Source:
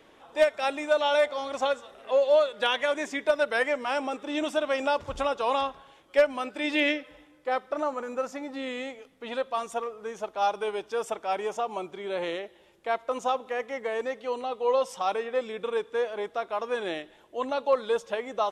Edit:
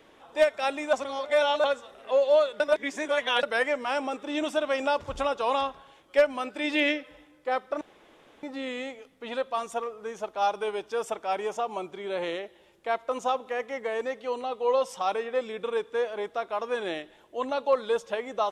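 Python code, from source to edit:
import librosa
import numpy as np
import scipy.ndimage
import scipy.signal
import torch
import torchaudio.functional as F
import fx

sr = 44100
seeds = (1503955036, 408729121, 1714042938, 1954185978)

y = fx.edit(x, sr, fx.reverse_span(start_s=0.93, length_s=0.71),
    fx.reverse_span(start_s=2.6, length_s=0.83),
    fx.room_tone_fill(start_s=7.81, length_s=0.62), tone=tone)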